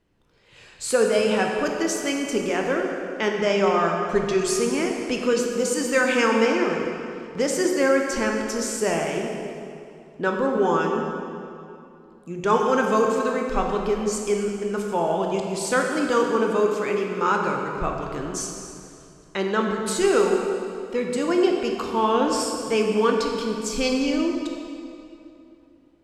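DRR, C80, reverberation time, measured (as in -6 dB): 1.0 dB, 3.5 dB, 2.7 s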